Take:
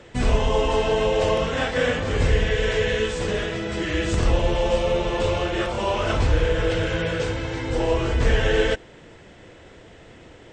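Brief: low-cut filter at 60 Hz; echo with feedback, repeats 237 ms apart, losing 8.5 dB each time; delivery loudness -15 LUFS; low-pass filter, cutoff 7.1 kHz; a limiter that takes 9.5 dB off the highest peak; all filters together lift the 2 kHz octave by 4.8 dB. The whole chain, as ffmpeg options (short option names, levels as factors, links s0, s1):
-af "highpass=60,lowpass=7100,equalizer=f=2000:t=o:g=6,alimiter=limit=0.15:level=0:latency=1,aecho=1:1:237|474|711|948:0.376|0.143|0.0543|0.0206,volume=2.99"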